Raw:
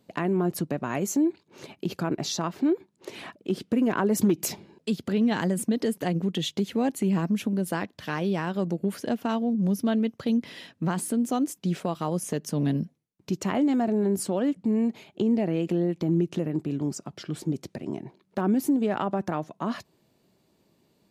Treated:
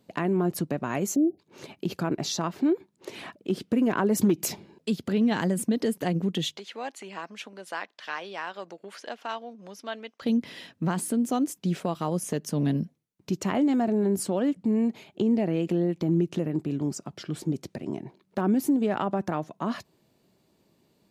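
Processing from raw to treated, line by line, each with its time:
1.16–1.39 spectral delete 780–9900 Hz
6.57–10.22 BPF 790–5900 Hz

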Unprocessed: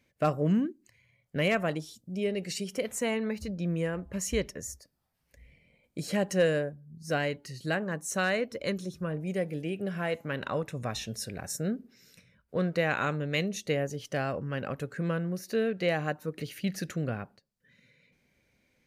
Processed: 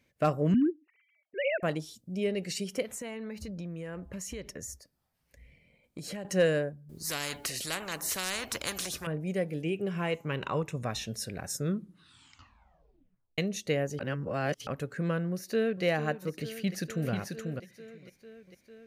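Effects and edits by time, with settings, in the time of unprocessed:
0.54–1.63 sine-wave speech
2.82–6.25 compressor, threshold -36 dBFS
6.89–9.07 spectral compressor 4:1
9.63–10.76 ripple EQ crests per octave 0.72, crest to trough 7 dB
11.48 tape stop 1.90 s
13.99–14.67 reverse
15.32–15.84 echo throw 0.45 s, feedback 80%, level -13 dB
16.53–17.1 echo throw 0.49 s, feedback 10%, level -4.5 dB

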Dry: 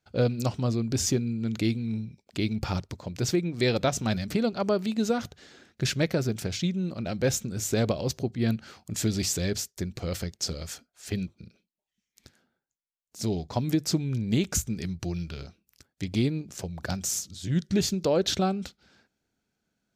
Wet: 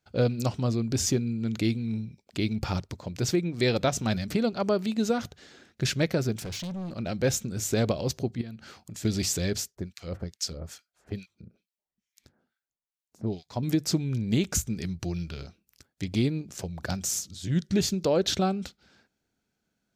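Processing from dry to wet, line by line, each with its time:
6.36–6.96 hard clip -32.5 dBFS
8.41–9.05 compressor, threshold -37 dBFS
9.75–13.63 harmonic tremolo 2.3 Hz, depth 100%, crossover 1300 Hz

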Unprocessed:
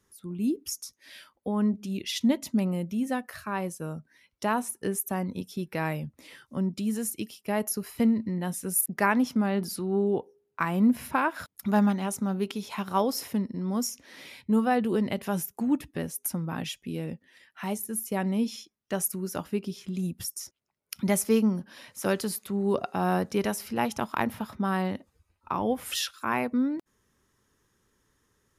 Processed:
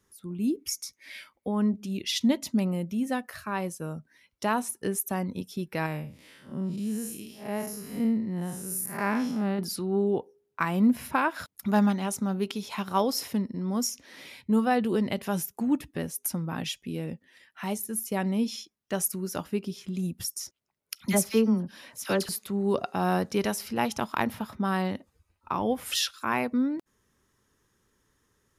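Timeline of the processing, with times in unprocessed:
0.59–1.49 bell 2200 Hz +15 dB 0.22 oct
5.86–9.59 time blur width 0.156 s
20.95–22.29 dispersion lows, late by 54 ms, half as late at 1600 Hz
whole clip: dynamic EQ 4500 Hz, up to +4 dB, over -46 dBFS, Q 1

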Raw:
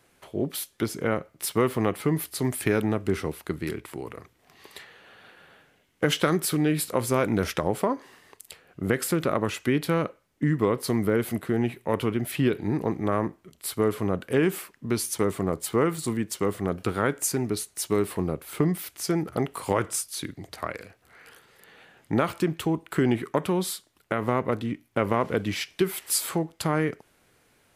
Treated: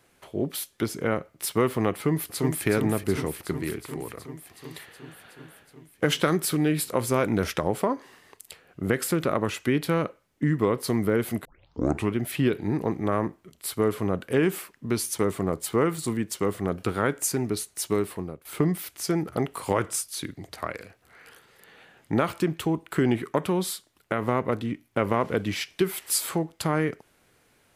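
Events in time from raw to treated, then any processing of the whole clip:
1.92–2.66 echo throw 0.37 s, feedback 75%, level -6.5 dB
11.45 tape start 0.67 s
17.9–18.45 fade out, to -16 dB

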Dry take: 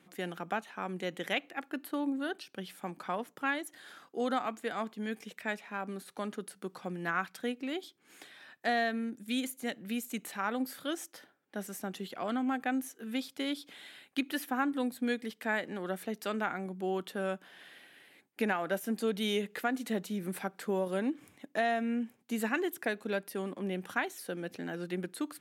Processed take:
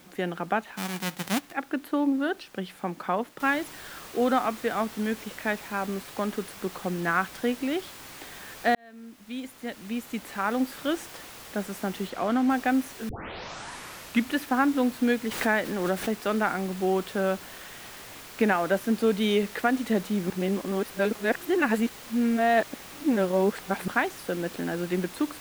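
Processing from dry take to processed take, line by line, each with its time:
0.76–1.51 spectral whitening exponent 0.1
3.4 noise floor step -58 dB -46 dB
8.75–10.8 fade in
12.1–12.5 high shelf 8800 Hz -10.5 dB
13.09 tape start 1.27 s
15.31–16.1 backwards sustainer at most 43 dB/s
20.3–23.88 reverse
whole clip: high shelf 3700 Hz -11 dB; gain +8.5 dB

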